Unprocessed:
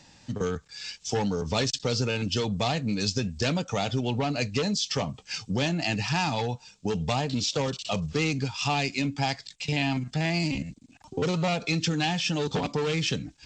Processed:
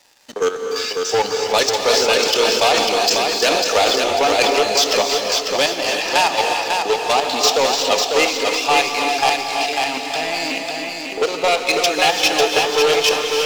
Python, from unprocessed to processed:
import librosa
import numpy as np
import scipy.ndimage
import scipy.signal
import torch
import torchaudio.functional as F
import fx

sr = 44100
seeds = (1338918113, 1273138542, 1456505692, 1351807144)

y = scipy.signal.sosfilt(scipy.signal.butter(4, 400.0, 'highpass', fs=sr, output='sos'), x)
y = fx.leveller(y, sr, passes=3)
y = fx.level_steps(y, sr, step_db=10)
y = fx.echo_feedback(y, sr, ms=547, feedback_pct=34, wet_db=-4.5)
y = fx.rev_gated(y, sr, seeds[0], gate_ms=380, shape='rising', drr_db=4.0)
y = fx.sustainer(y, sr, db_per_s=26.0, at=(1.84, 4.57))
y = F.gain(torch.from_numpy(y), 5.0).numpy()